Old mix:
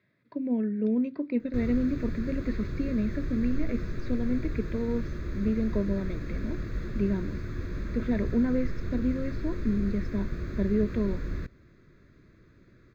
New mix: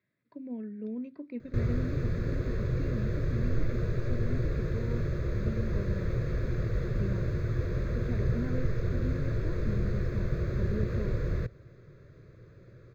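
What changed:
speech −10.5 dB
background: add octave-band graphic EQ 125/250/500 Hz +11/−9/+12 dB

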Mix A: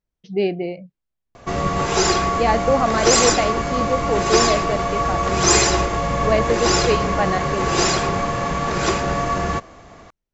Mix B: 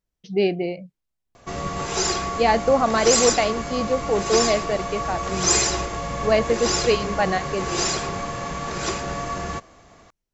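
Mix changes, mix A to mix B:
background −7.5 dB
master: add high-shelf EQ 4,500 Hz +8 dB

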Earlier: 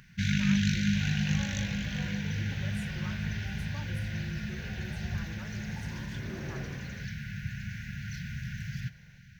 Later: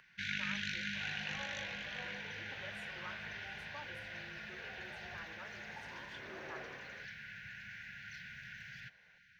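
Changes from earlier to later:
first sound: send off
master: add three-way crossover with the lows and the highs turned down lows −22 dB, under 420 Hz, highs −15 dB, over 4,100 Hz

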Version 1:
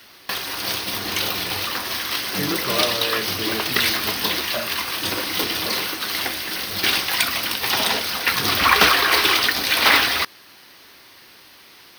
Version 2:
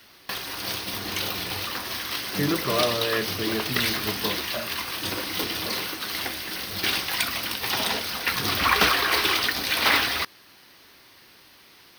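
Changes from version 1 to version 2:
background −5.5 dB
master: add low-shelf EQ 240 Hz +4.5 dB

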